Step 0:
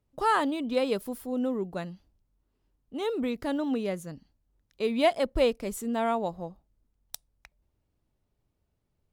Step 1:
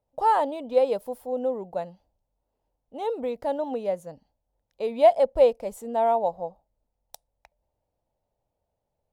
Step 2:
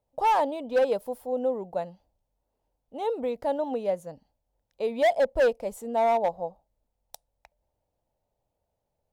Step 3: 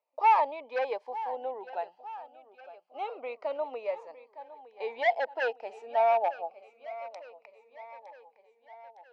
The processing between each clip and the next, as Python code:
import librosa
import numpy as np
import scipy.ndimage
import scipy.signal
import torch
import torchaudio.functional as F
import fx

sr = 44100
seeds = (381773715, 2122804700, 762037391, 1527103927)

y1 = fx.band_shelf(x, sr, hz=670.0, db=14.0, octaves=1.2)
y1 = F.gain(torch.from_numpy(y1), -6.5).numpy()
y2 = np.clip(10.0 ** (17.5 / 20.0) * y1, -1.0, 1.0) / 10.0 ** (17.5 / 20.0)
y3 = fx.cabinet(y2, sr, low_hz=470.0, low_slope=24, high_hz=4300.0, hz=(520.0, 830.0, 1200.0, 2400.0, 3600.0), db=(-7, 5, 4, 8, -8))
y3 = fx.echo_feedback(y3, sr, ms=910, feedback_pct=57, wet_db=-16.0)
y3 = fx.notch_cascade(y3, sr, direction='falling', hz=0.27)